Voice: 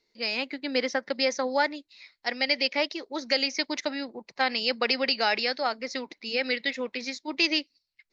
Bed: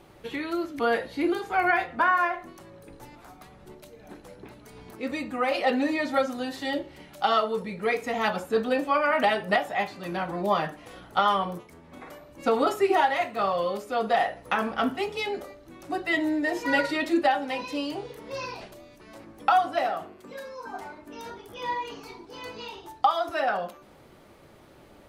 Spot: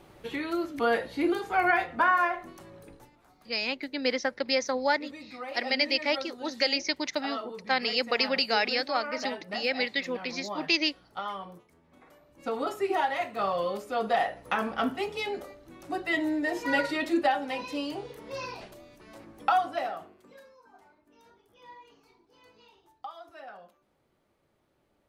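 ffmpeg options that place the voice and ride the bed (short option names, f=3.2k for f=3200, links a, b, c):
-filter_complex "[0:a]adelay=3300,volume=-1dB[a];[1:a]volume=9.5dB,afade=t=out:st=2.82:d=0.29:silence=0.251189,afade=t=in:st=12.11:d=1.45:silence=0.298538,afade=t=out:st=19.41:d=1.21:silence=0.141254[b];[a][b]amix=inputs=2:normalize=0"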